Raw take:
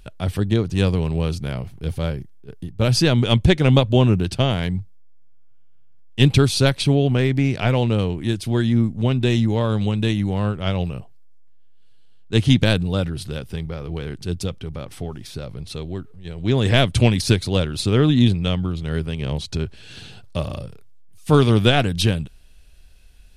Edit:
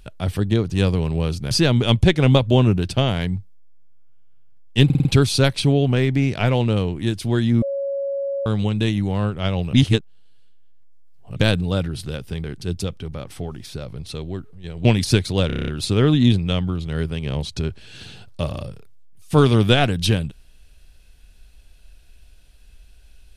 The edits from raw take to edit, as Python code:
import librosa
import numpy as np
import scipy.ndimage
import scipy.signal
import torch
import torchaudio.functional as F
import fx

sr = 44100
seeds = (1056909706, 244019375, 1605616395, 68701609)

y = fx.edit(x, sr, fx.cut(start_s=1.51, length_s=1.42),
    fx.stutter(start_s=6.27, slice_s=0.05, count=5),
    fx.bleep(start_s=8.84, length_s=0.84, hz=555.0, db=-21.5),
    fx.reverse_span(start_s=10.95, length_s=1.63),
    fx.cut(start_s=13.66, length_s=0.39),
    fx.cut(start_s=16.46, length_s=0.56),
    fx.stutter(start_s=17.64, slice_s=0.03, count=8), tone=tone)